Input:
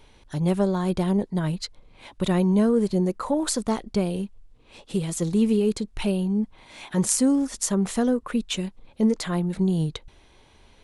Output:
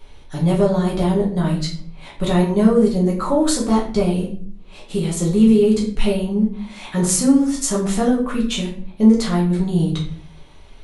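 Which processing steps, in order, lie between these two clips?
rectangular room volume 56 cubic metres, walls mixed, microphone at 1.1 metres

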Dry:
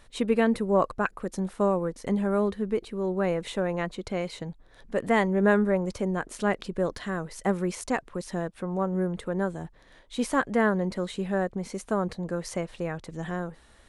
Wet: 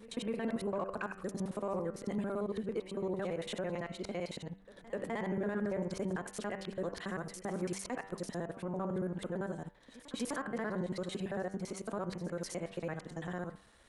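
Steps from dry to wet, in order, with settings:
reversed piece by piece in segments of 56 ms
low-shelf EQ 72 Hz −9.5 dB
hum removal 97.11 Hz, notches 32
in parallel at −7 dB: soft clipping −23.5 dBFS, distortion −10 dB
on the sum: brickwall limiter −19.5 dBFS, peak gain reduction 11.5 dB
on a send: backwards echo 254 ms −18 dB
on the sum: level −8 dB

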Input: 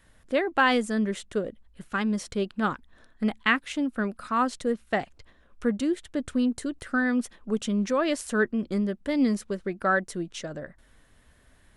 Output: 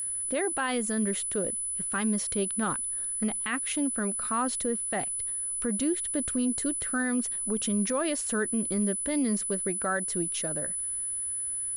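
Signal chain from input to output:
steady tone 10,000 Hz −30 dBFS
brickwall limiter −19.5 dBFS, peak gain reduction 12 dB

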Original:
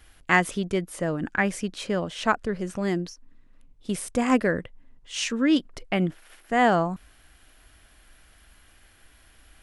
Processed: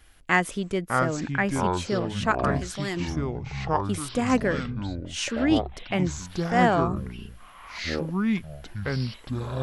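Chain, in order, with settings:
0:02.31–0:02.97: tilt shelving filter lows −6.5 dB, about 1,100 Hz
delay with pitch and tempo change per echo 485 ms, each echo −6 semitones, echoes 3
level −1.5 dB

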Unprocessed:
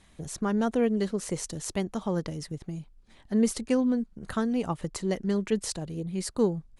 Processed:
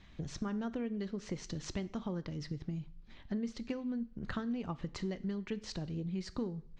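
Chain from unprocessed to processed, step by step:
Bessel low-pass filter 3,600 Hz, order 8
parametric band 640 Hz −6.5 dB 2.2 octaves
downward compressor 6 to 1, threshold −38 dBFS, peak gain reduction 15.5 dB
coupled-rooms reverb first 0.53 s, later 1.6 s, from −24 dB, DRR 14 dB
level +3 dB

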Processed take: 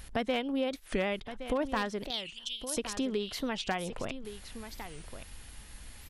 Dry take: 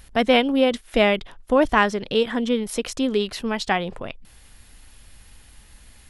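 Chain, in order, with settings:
wavefolder on the positive side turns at −10.5 dBFS
0:02.11–0:02.77: elliptic high-pass filter 2,900 Hz, stop band 40 dB
downward compressor 3 to 1, threshold −33 dBFS, peak gain reduction 15 dB
on a send: single-tap delay 1,118 ms −11.5 dB
on the sum: wow of a warped record 45 rpm, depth 250 cents

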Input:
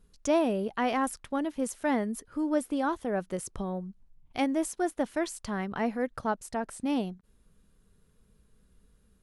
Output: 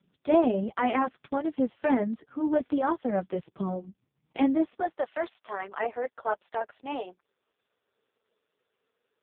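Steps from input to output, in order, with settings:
high-pass filter 110 Hz 24 dB per octave, from 0:04.80 410 Hz
flanger 1.4 Hz, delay 5.1 ms, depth 4.3 ms, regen −21%
level +6.5 dB
AMR narrowband 4.75 kbit/s 8,000 Hz

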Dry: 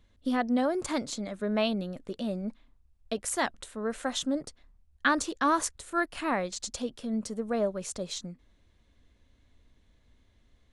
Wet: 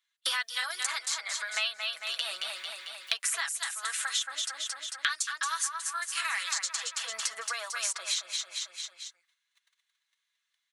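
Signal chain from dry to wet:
comb filter 6.1 ms, depth 71%
noise gate −50 dBFS, range −44 dB
high-pass filter 1,300 Hz 24 dB per octave
repeating echo 223 ms, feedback 32%, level −8 dB
in parallel at −1 dB: downward compressor, threshold −46 dBFS, peak gain reduction 22.5 dB
on the sum: high-shelf EQ 5,500 Hz +5 dB
multiband upward and downward compressor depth 100%

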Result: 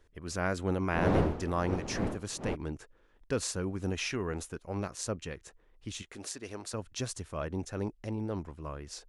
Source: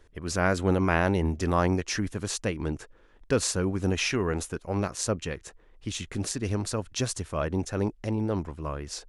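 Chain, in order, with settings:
0:00.93–0:02.54: wind on the microphone 470 Hz −21 dBFS
0:06.02–0:06.74: bass and treble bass −15 dB, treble 0 dB
level −7 dB

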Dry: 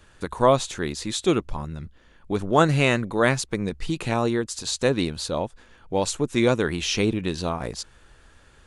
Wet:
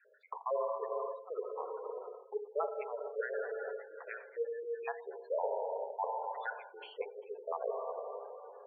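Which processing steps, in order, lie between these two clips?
time-frequency cells dropped at random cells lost 63%
low-pass filter 1,100 Hz 12 dB per octave
four-comb reverb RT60 3.7 s, combs from 28 ms, DRR 4 dB
reversed playback
downward compressor 10 to 1, threshold −34 dBFS, peak gain reduction 17.5 dB
reversed playback
Butterworth high-pass 410 Hz 96 dB per octave
harmonic generator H 5 −16 dB, 7 −18 dB, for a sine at −26.5 dBFS
gate on every frequency bin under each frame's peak −15 dB strong
level +3.5 dB

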